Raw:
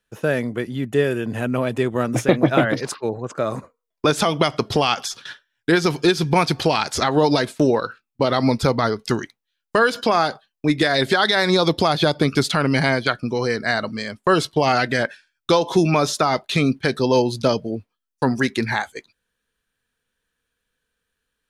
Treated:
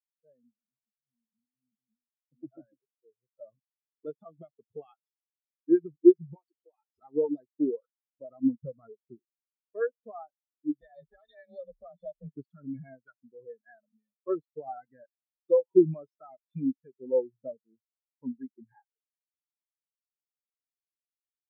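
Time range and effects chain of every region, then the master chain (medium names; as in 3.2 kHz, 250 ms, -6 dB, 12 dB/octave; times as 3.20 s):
0.57–2.32 s: hard clipper -10.5 dBFS + Butterworth band-pass 180 Hz, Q 2.5 + compressor with a negative ratio -40 dBFS
6.35–6.89 s: steep high-pass 280 Hz + compression 5:1, threshold -19 dBFS
10.81–12.31 s: comb filter that takes the minimum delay 1.7 ms + frequency shift +23 Hz
whole clip: level rider gain up to 11.5 dB; spectral contrast expander 4:1; trim -5.5 dB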